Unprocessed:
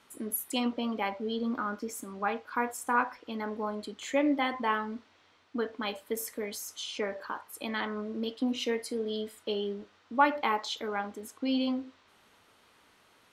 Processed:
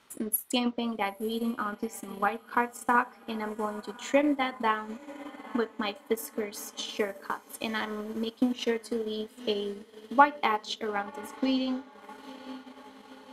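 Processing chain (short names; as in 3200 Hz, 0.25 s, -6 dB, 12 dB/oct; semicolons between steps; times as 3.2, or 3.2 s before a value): diffused feedback echo 0.912 s, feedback 59%, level -15.5 dB; transient shaper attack +6 dB, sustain -8 dB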